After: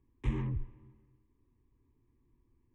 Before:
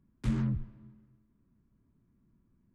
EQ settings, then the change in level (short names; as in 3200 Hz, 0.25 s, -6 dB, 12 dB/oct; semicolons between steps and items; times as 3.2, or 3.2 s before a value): air absorption 96 m; fixed phaser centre 950 Hz, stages 8; +3.0 dB